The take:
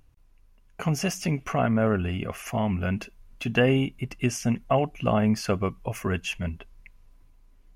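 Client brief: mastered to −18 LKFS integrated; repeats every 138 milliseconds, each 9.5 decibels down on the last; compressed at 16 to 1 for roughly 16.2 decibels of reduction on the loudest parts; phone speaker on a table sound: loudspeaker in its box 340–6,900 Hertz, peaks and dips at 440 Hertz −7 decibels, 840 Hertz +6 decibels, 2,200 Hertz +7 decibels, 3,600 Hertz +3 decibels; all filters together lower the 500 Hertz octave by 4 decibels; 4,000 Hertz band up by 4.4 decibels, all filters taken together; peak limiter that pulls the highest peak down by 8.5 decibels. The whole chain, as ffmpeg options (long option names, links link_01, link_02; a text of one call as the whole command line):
ffmpeg -i in.wav -af "equalizer=frequency=500:width_type=o:gain=-3,equalizer=frequency=4000:width_type=o:gain=4.5,acompressor=threshold=-34dB:ratio=16,alimiter=level_in=5.5dB:limit=-24dB:level=0:latency=1,volume=-5.5dB,highpass=frequency=340:width=0.5412,highpass=frequency=340:width=1.3066,equalizer=frequency=440:width_type=q:width=4:gain=-7,equalizer=frequency=840:width_type=q:width=4:gain=6,equalizer=frequency=2200:width_type=q:width=4:gain=7,equalizer=frequency=3600:width_type=q:width=4:gain=3,lowpass=frequency=6900:width=0.5412,lowpass=frequency=6900:width=1.3066,aecho=1:1:138|276|414|552:0.335|0.111|0.0365|0.012,volume=24.5dB" out.wav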